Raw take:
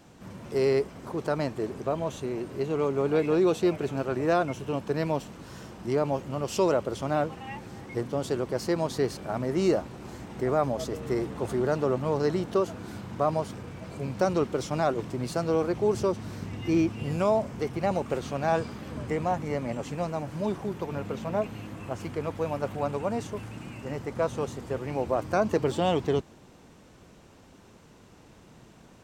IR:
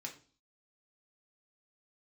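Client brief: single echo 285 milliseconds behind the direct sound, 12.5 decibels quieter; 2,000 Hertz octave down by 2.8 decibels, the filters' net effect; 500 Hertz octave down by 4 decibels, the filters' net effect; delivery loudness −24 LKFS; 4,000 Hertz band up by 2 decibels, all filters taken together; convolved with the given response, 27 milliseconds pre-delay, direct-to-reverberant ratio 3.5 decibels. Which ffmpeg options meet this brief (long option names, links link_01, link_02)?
-filter_complex "[0:a]equalizer=frequency=500:width_type=o:gain=-5,equalizer=frequency=2000:width_type=o:gain=-4.5,equalizer=frequency=4000:width_type=o:gain=4,aecho=1:1:285:0.237,asplit=2[link_01][link_02];[1:a]atrim=start_sample=2205,adelay=27[link_03];[link_02][link_03]afir=irnorm=-1:irlink=0,volume=-1.5dB[link_04];[link_01][link_04]amix=inputs=2:normalize=0,volume=6dB"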